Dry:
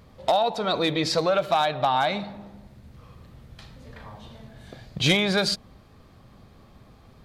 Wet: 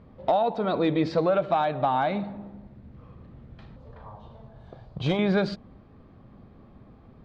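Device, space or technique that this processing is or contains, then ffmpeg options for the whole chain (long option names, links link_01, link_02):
phone in a pocket: -filter_complex "[0:a]asettb=1/sr,asplit=3[link_01][link_02][link_03];[link_01]atrim=end=3.764[link_04];[link_02]atrim=start=3.76:end=5.19,asetpts=PTS-STARTPTS,afade=type=in:duration=0.004:curve=qsin,afade=type=out:start_time=1.426:duration=0.004:curve=qsin,equalizer=frequency=250:width_type=o:width=1:gain=-10,equalizer=frequency=1000:width_type=o:width=1:gain=5,equalizer=frequency=2000:width_type=o:width=1:gain=-9[link_05];[link_03]atrim=start=5.186[link_06];[link_04][link_05]acrossfade=duration=0.004:curve1=hsin:curve2=qsin[link_07];[link_07][link_06]acrossfade=duration=0.004:curve1=qsin:curve2=hsin,lowpass=3500,equalizer=frequency=260:width_type=o:width=1.4:gain=5,highshelf=frequency=2200:gain=-10.5,volume=-1dB"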